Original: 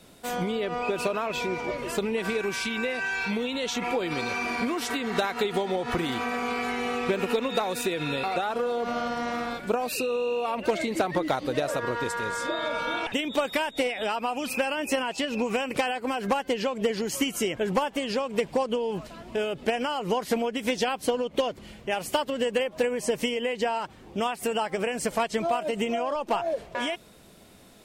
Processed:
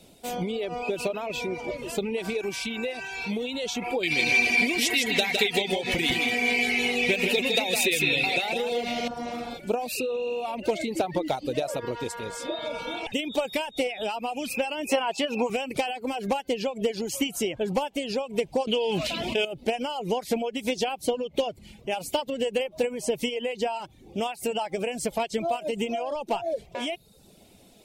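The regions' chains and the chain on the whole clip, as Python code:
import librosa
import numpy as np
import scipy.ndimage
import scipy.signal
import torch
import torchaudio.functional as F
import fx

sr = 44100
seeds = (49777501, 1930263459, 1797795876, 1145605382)

y = fx.chain(x, sr, fx.high_shelf_res(hz=1600.0, db=7.5, q=3.0),
    fx.echo_single(ms=160, db=-4.0), at=(4.03, 9.08))
y = fx.chain(y, sr, fx.highpass(hz=130.0, slope=12),
    fx.peak_eq(hz=1100.0, db=9.0, octaves=1.7), at=(14.89, 15.5))
y = fx.chain(y, sr, fx.highpass(hz=120.0, slope=6),
    fx.peak_eq(hz=3000.0, db=10.5, octaves=1.6),
    fx.env_flatten(amount_pct=70), at=(18.67, 19.45))
y = fx.dereverb_blind(y, sr, rt60_s=0.59)
y = fx.band_shelf(y, sr, hz=1400.0, db=-9.0, octaves=1.1)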